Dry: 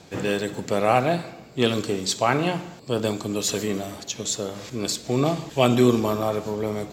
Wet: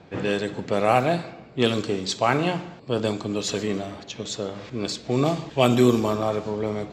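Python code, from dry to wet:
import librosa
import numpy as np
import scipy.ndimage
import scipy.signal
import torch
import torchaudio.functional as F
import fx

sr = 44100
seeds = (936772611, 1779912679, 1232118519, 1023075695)

y = fx.env_lowpass(x, sr, base_hz=2400.0, full_db=-14.0)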